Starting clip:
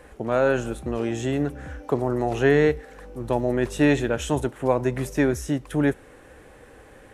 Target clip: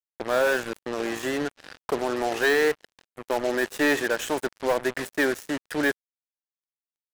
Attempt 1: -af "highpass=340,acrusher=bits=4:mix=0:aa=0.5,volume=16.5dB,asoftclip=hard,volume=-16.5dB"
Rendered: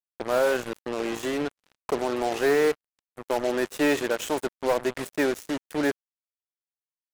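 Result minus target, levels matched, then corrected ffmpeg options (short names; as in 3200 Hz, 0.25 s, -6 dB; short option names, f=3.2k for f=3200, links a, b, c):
2000 Hz band -4.5 dB
-af "highpass=340,equalizer=f=1.7k:w=3.4:g=9.5,acrusher=bits=4:mix=0:aa=0.5,volume=16.5dB,asoftclip=hard,volume=-16.5dB"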